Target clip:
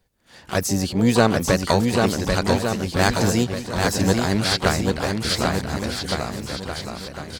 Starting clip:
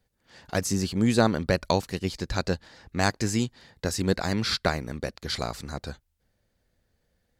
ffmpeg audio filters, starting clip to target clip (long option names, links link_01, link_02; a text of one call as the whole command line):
ffmpeg -i in.wav -filter_complex "[0:a]asplit=3[link_01][link_02][link_03];[link_02]asetrate=66075,aresample=44100,atempo=0.66742,volume=-17dB[link_04];[link_03]asetrate=88200,aresample=44100,atempo=0.5,volume=-11dB[link_05];[link_01][link_04][link_05]amix=inputs=3:normalize=0,aecho=1:1:790|1462|2032|2517|2930:0.631|0.398|0.251|0.158|0.1,volume=4.5dB" out.wav